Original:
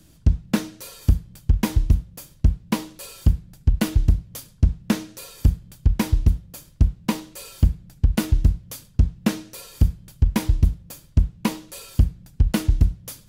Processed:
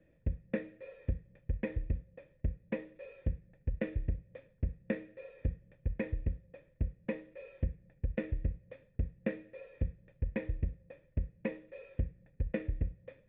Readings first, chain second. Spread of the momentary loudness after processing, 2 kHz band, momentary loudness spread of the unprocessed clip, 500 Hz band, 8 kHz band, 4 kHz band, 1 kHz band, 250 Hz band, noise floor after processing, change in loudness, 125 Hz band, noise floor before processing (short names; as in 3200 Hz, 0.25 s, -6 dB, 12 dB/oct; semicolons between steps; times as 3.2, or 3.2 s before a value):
10 LU, -10.5 dB, 9 LU, -5.0 dB, under -40 dB, under -25 dB, -22.0 dB, -15.0 dB, -68 dBFS, -16.0 dB, -16.5 dB, -52 dBFS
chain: dynamic EQ 810 Hz, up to -6 dB, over -45 dBFS, Q 1.2; vocal tract filter e; gain +3.5 dB